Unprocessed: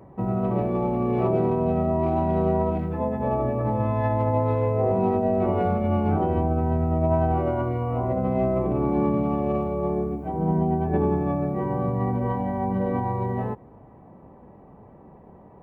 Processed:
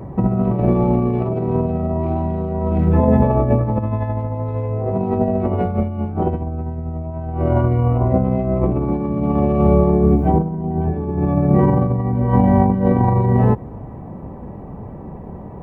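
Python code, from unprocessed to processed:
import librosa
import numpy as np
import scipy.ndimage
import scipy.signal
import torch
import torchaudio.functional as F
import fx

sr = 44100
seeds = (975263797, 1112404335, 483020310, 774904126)

y = fx.low_shelf(x, sr, hz=220.0, db=10.0)
y = fx.over_compress(y, sr, threshold_db=-22.0, ratio=-0.5)
y = y * librosa.db_to_amplitude(6.0)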